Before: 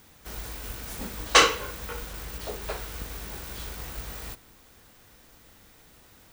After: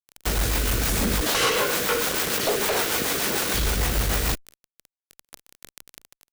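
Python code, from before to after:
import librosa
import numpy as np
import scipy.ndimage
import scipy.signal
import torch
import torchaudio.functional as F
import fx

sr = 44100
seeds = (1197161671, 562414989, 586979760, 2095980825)

y = fx.highpass(x, sr, hz=260.0, slope=12, at=(1.21, 3.54))
y = fx.fuzz(y, sr, gain_db=41.0, gate_db=-44.0)
y = fx.rotary(y, sr, hz=6.7)
y = fx.env_flatten(y, sr, amount_pct=50)
y = y * librosa.db_to_amplitude(-5.5)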